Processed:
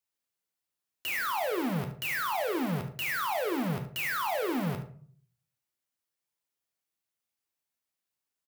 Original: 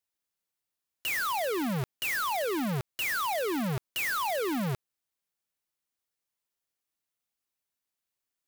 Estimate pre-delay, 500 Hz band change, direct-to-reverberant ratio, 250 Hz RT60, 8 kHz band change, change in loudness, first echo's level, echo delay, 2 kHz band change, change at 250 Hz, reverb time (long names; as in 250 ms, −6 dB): 12 ms, −0.5 dB, 4.0 dB, 0.65 s, −4.5 dB, −1.0 dB, −12.5 dB, 73 ms, −1.0 dB, 0.0 dB, 0.50 s